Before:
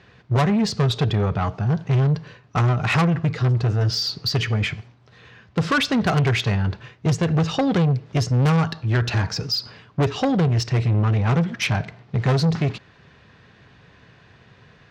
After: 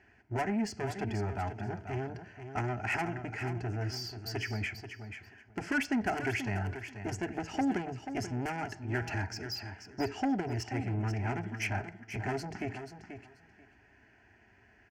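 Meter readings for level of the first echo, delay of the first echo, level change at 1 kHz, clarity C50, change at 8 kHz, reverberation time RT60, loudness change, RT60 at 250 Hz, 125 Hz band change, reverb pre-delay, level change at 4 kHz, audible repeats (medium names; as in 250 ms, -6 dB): -9.5 dB, 485 ms, -9.5 dB, no reverb, -11.0 dB, no reverb, -14.0 dB, no reverb, -17.5 dB, no reverb, -17.0 dB, 2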